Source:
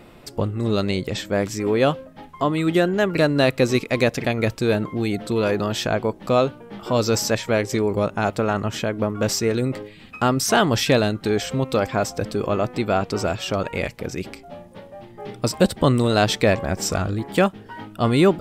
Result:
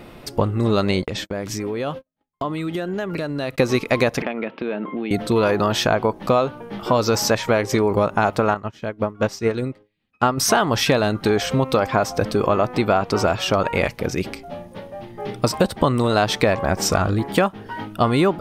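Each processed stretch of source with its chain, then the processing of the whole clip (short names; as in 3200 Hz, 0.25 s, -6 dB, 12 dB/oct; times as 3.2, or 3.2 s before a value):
1.02–3.58 gate -34 dBFS, range -47 dB + compressor 8:1, threshold -27 dBFS
4.22–5.11 elliptic band-pass 210–3000 Hz + compressor 4:1, threshold -28 dBFS
8.54–10.38 high shelf 9800 Hz -8.5 dB + upward expander 2.5:1, over -40 dBFS
whole clip: notch 7600 Hz, Q 8.5; dynamic EQ 1000 Hz, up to +7 dB, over -35 dBFS, Q 1; compressor, threshold -19 dBFS; gain +5 dB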